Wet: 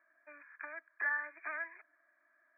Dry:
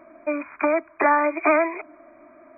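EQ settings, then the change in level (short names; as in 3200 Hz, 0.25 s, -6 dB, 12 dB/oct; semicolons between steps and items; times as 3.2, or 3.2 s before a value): band-pass 1700 Hz, Q 17; air absorption 360 m; +1.0 dB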